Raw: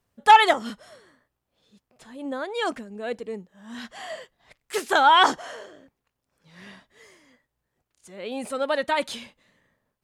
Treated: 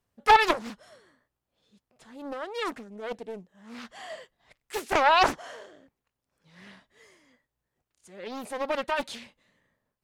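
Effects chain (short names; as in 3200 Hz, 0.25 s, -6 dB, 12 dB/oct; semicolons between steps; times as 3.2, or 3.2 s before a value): Doppler distortion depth 0.64 ms; gain -4.5 dB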